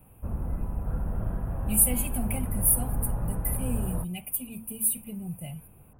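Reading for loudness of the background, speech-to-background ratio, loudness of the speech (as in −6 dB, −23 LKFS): −33.5 LKFS, 6.0 dB, −27.5 LKFS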